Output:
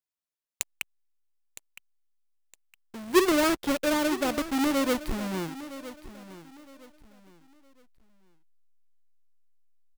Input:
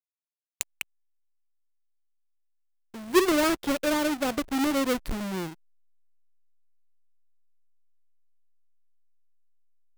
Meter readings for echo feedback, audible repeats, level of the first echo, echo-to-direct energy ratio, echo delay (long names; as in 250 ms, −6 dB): 30%, 2, −15.0 dB, −14.5 dB, 963 ms